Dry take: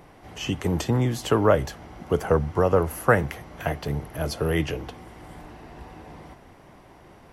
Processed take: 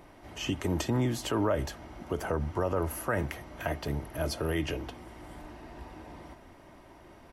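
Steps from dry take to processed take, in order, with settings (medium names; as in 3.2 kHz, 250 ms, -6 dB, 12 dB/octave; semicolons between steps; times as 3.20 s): comb 3.2 ms, depth 35%; peak limiter -16 dBFS, peak gain reduction 10 dB; trim -3.5 dB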